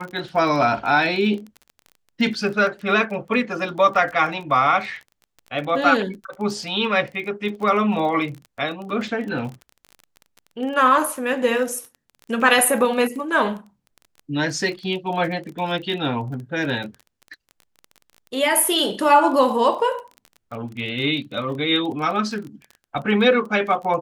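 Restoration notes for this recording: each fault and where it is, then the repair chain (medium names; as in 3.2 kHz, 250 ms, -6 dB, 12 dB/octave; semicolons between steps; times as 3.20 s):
crackle 24 per s -30 dBFS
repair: de-click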